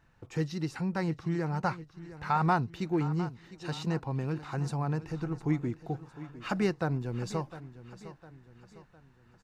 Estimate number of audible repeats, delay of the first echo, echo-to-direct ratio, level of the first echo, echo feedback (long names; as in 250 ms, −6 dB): 3, 706 ms, −14.0 dB, −15.0 dB, 45%